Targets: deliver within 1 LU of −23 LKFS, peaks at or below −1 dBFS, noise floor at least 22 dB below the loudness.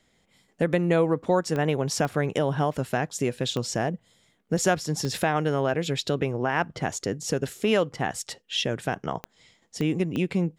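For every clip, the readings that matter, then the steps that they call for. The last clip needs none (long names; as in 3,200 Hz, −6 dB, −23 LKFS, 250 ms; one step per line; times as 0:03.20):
number of clicks 7; integrated loudness −26.5 LKFS; sample peak −9.0 dBFS; target loudness −23.0 LKFS
→ click removal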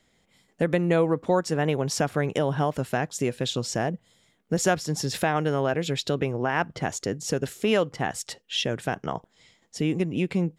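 number of clicks 0; integrated loudness −26.5 LKFS; sample peak −9.0 dBFS; target loudness −23.0 LKFS
→ level +3.5 dB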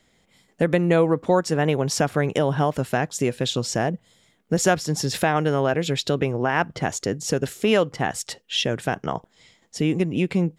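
integrated loudness −23.0 LKFS; sample peak −5.5 dBFS; background noise floor −63 dBFS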